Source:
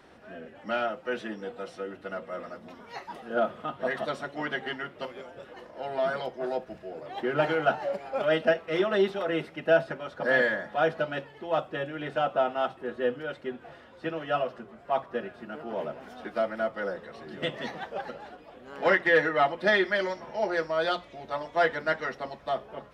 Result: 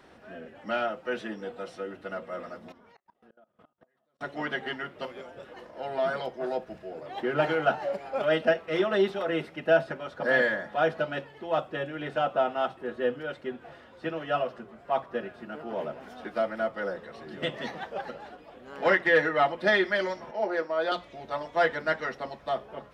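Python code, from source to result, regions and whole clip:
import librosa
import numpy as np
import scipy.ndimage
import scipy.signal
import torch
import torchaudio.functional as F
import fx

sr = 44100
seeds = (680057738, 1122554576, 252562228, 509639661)

y = fx.chain(x, sr, fx.high_shelf(hz=2600.0, db=-7.0),
    fx.gate_flip(shuts_db=-31.0, range_db=-32),
    fx.level_steps(step_db=19), at=(2.72, 4.21))
y = fx.chain(y, sr, fx.highpass(hz=210.0, slope=24),
    fx.high_shelf(hz=3000.0, db=-10.0), at=(20.31, 20.92))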